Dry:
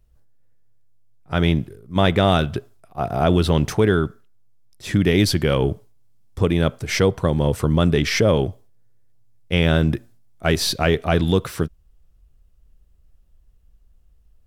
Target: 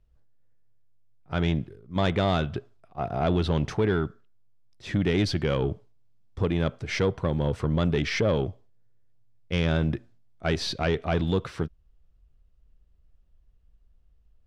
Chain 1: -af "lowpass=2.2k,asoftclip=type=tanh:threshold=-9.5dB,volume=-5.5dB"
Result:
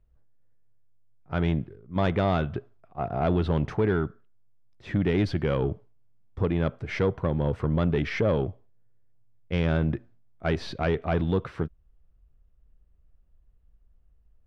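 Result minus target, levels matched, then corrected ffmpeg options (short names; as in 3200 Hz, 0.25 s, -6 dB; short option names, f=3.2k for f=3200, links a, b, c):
4000 Hz band -7.0 dB
-af "lowpass=4.6k,asoftclip=type=tanh:threshold=-9.5dB,volume=-5.5dB"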